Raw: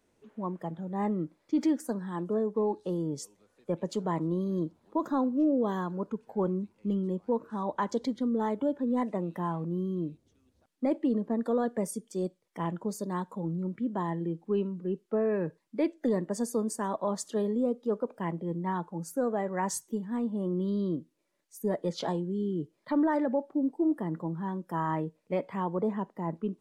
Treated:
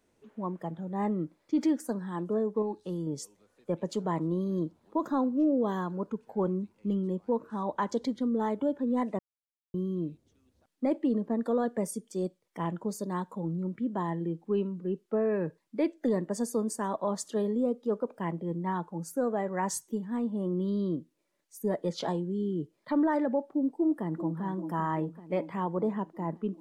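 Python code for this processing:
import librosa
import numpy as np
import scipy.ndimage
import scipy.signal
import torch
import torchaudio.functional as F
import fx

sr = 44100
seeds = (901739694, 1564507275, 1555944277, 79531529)

y = fx.peak_eq(x, sr, hz=610.0, db=-7.0, octaves=1.8, at=(2.62, 3.07))
y = fx.echo_throw(y, sr, start_s=23.72, length_s=0.69, ms=390, feedback_pct=70, wet_db=-10.5)
y = fx.edit(y, sr, fx.silence(start_s=9.19, length_s=0.55), tone=tone)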